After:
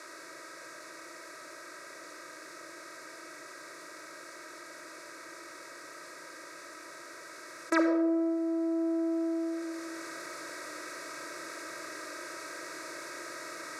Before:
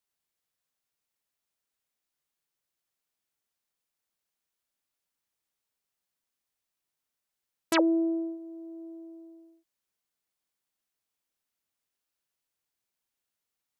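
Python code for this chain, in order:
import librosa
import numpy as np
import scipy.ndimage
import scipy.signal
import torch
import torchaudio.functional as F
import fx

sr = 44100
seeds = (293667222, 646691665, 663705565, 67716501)

y = fx.bin_compress(x, sr, power=0.6)
y = scipy.signal.sosfilt(scipy.signal.butter(2, 6300.0, 'lowpass', fs=sr, output='sos'), y)
y = fx.rider(y, sr, range_db=5, speed_s=2.0)
y = scipy.signal.sosfilt(scipy.signal.butter(4, 150.0, 'highpass', fs=sr, output='sos'), y)
y = fx.peak_eq(y, sr, hz=540.0, db=-3.0, octaves=1.2)
y = fx.fixed_phaser(y, sr, hz=830.0, stages=6)
y = fx.room_shoebox(y, sr, seeds[0], volume_m3=3100.0, walls='furnished', distance_m=2.8)
y = fx.env_flatten(y, sr, amount_pct=50)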